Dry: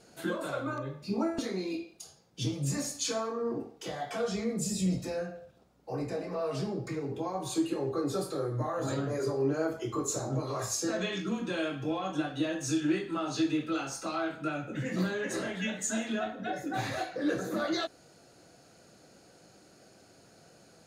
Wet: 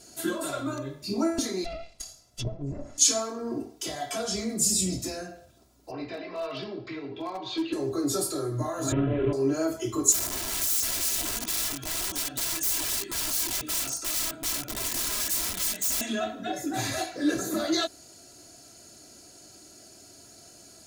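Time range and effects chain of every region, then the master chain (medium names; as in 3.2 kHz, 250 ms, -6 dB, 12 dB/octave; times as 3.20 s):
1.64–2.98 s: comb filter that takes the minimum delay 1.5 ms + low-pass that closes with the level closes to 660 Hz, closed at -32 dBFS
5.91–7.73 s: steep low-pass 3.6 kHz + tilt EQ +3 dB/octave + overload inside the chain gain 28.5 dB
8.92–9.33 s: CVSD coder 16 kbps + tilt EQ -2.5 dB/octave
10.12–16.01 s: harmonic tremolo 2.6 Hz, depth 50%, crossover 990 Hz + integer overflow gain 34.5 dB
whole clip: tone controls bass +5 dB, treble +14 dB; comb 3 ms, depth 63%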